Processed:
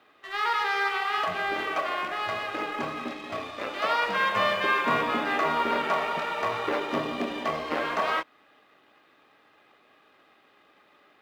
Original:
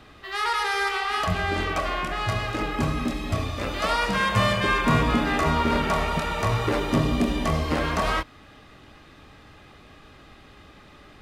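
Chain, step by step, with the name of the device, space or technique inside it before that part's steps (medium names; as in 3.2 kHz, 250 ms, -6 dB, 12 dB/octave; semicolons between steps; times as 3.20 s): phone line with mismatched companding (band-pass 390–3400 Hz; companding laws mixed up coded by A)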